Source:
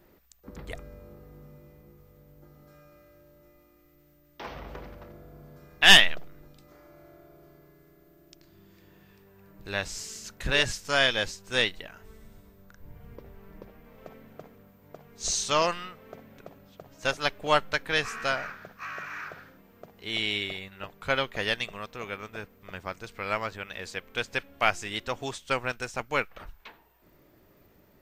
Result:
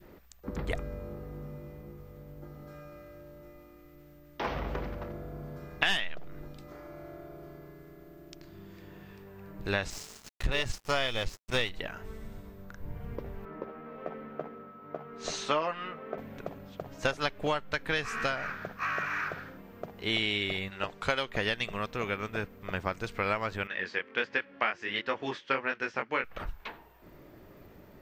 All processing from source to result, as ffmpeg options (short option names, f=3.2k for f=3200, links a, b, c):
-filter_complex "[0:a]asettb=1/sr,asplit=3[a][b][c];[a]atrim=end=9.904[d];[b]atrim=start=9.9:end=11.72,asetpts=PTS-STARTPTS,afade=t=in:d=0.004:c=qsin,afade=t=out:st=1.816:d=0.004:c=qsin,bandreject=f=1.6k:w=6.5,asubboost=boost=5:cutoff=120,aeval=exprs='sgn(val(0))*max(abs(val(0))-0.0106,0)':c=same[e];[c]atrim=start=11.716[f];[d][e]acrossfade=d=0.004:c1=hsin:c2=qsin[g];[g][f]acrossfade=d=0.004:c1=qsin:c2=hsin,asettb=1/sr,asplit=3[h][i][j];[h]atrim=end=13.454[k];[i]atrim=start=13.45:end=16.18,asetpts=PTS-STARTPTS,afade=t=in:d=0.004:c=qsin,afade=t=out:st=2.726:d=0.004:c=qsin,acrossover=split=170 3100:gain=0.1 1 0.141[l][m][n];[l][m][n]amix=inputs=3:normalize=0,aeval=exprs='val(0)+0.00112*sin(2*PI*1300*n/s)':c=same,asplit=2[o][p];[p]adelay=13,volume=-6.5dB[q];[o][q]amix=inputs=2:normalize=0,atrim=end_sample=120393[r];[j]atrim=start=16.176[s];[k][r]acrossfade=d=0.004:c1=hsin:c2=qsin[t];[t][s]acrossfade=d=0.004:c1=qsin:c2=hsin,asettb=1/sr,asplit=3[u][v][w];[u]atrim=end=20.704[x];[v]atrim=start=20.7:end=21.29,asetpts=PTS-STARTPTS,afade=t=in:d=0.004:c=qsin,afade=t=out:st=0.586:d=0.004:c=qsin,bass=f=250:g=-5,treble=f=4k:g=13,adynamicsmooth=sensitivity=4:basefreq=6.1k[y];[w]atrim=start=21.286[z];[x][y]acrossfade=d=0.004:c1=hsin:c2=qsin[aa];[aa][z]acrossfade=d=0.004:c1=qsin:c2=hsin,asettb=1/sr,asplit=3[ab][ac][ad];[ab]atrim=end=23.674[ae];[ac]atrim=start=23.67:end=26.24,asetpts=PTS-STARTPTS,afade=t=in:d=0.004:c=qsin,afade=t=out:st=2.566:d=0.004:c=qsin,highpass=230,equalizer=f=700:t=q:w=4:g=-6,equalizer=f=1.8k:t=q:w=4:g=6,equalizer=f=3.9k:t=q:w=4:g=-5,lowpass=f=4.6k:w=0.5412,lowpass=f=4.6k:w=1.3066,flanger=delay=19:depth=4.4:speed=1.4[af];[ad]atrim=start=26.236[ag];[ae][af]acrossfade=d=0.004:c1=hsin:c2=qsin[ah];[ah][ag]acrossfade=d=0.004:c1=qsin:c2=hsin,highshelf=f=3.8k:g=-8.5,acompressor=threshold=-32dB:ratio=16,adynamicequalizer=threshold=0.00447:dfrequency=770:dqfactor=0.77:tfrequency=770:tqfactor=0.77:attack=5:release=100:ratio=0.375:range=2:mode=cutabove:tftype=bell,volume=7.5dB"